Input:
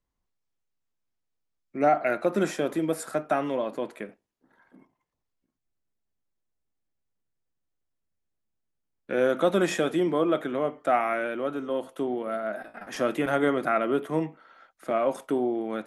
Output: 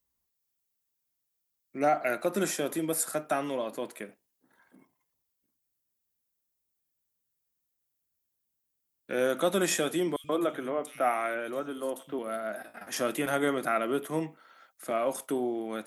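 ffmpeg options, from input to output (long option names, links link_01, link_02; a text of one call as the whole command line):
ffmpeg -i in.wav -filter_complex "[0:a]highpass=44,aemphasis=mode=production:type=75fm,asettb=1/sr,asplit=3[link_01][link_02][link_03];[link_01]atrim=end=10.164[link_04];[link_02]atrim=start=10.16:end=12.19,asetpts=PTS-STARTPTS,afade=type=in:duration=0.004:curve=qsin,afade=type=out:start_time=2.026:duration=0.004:curve=qsin,acrossover=split=160|3000[link_05][link_06][link_07];[link_05]adelay=80[link_08];[link_06]adelay=130[link_09];[link_08][link_09][link_07]amix=inputs=3:normalize=0,atrim=end_sample=89523[link_10];[link_03]atrim=start=12.186[link_11];[link_04][link_10]acrossfade=duration=0.004:curve1=hsin:curve2=qsin[link_12];[link_12][link_11]acrossfade=duration=0.004:curve1=qsin:curve2=hsin,volume=-3.5dB" out.wav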